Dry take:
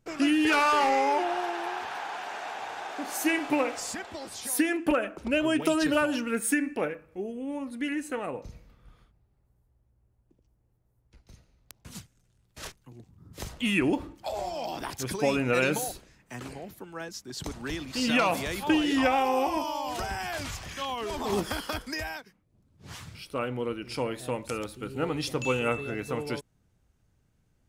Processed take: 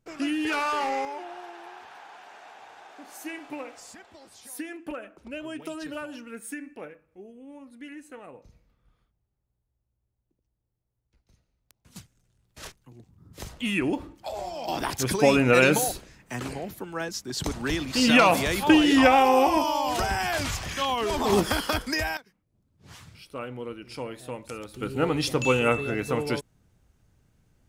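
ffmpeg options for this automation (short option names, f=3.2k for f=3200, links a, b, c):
-af "asetnsamples=n=441:p=0,asendcmd='1.05 volume volume -11dB;11.96 volume volume -1dB;14.68 volume volume 6.5dB;22.17 volume volume -4.5dB;24.74 volume volume 5dB',volume=-4dB"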